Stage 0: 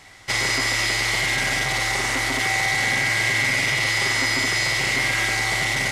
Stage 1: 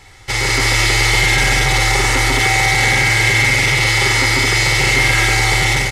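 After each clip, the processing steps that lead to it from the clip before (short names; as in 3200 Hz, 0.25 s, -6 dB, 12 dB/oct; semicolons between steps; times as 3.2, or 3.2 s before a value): low shelf 150 Hz +10 dB; comb 2.3 ms, depth 52%; AGC gain up to 6.5 dB; gain +1.5 dB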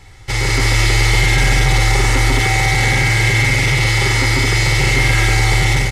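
low shelf 280 Hz +8.5 dB; gain -3 dB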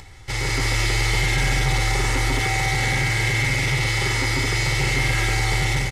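upward compressor, threshold -30 dBFS; doubler 14 ms -13 dB; gain -6.5 dB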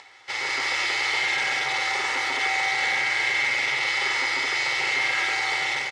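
in parallel at -10.5 dB: companded quantiser 4-bit; on the sum: BPF 690–4600 Hz; gain -1.5 dB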